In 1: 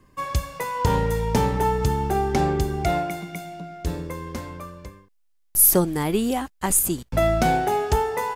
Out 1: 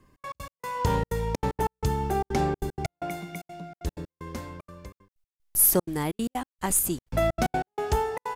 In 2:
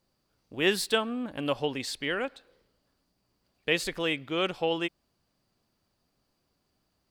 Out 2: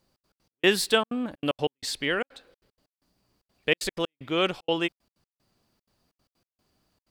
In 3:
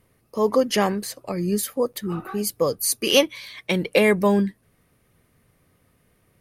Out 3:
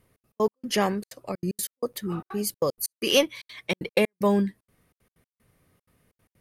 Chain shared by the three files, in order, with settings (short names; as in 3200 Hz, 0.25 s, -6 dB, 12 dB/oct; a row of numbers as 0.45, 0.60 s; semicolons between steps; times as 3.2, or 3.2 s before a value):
in parallel at -9.5 dB: one-sided clip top -15 dBFS; on the sum: step gate "xx.x.x..xxxxx.x" 189 bpm -60 dB; match loudness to -27 LUFS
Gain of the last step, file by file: -6.5, +1.5, -5.5 dB